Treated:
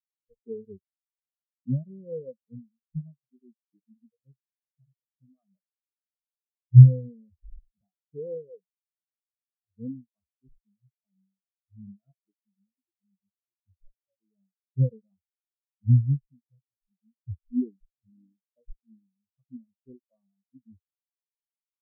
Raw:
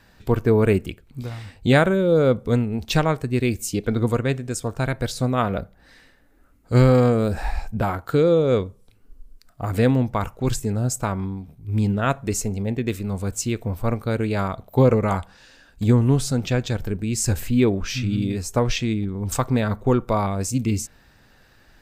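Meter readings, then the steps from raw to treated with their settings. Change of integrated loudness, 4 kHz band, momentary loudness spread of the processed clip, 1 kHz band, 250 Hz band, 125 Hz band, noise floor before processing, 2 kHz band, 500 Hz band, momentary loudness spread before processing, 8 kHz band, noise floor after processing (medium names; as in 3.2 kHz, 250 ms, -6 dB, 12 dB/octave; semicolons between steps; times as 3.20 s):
+0.5 dB, under -40 dB, 25 LU, under -40 dB, -13.5 dB, -2.5 dB, -55 dBFS, under -40 dB, -22.0 dB, 10 LU, under -40 dB, under -85 dBFS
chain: spectral noise reduction 14 dB; tilt shelf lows +5.5 dB, about 660 Hz; feedback comb 76 Hz, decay 1.7 s, harmonics all, mix 40%; spectral contrast expander 4:1; trim +2.5 dB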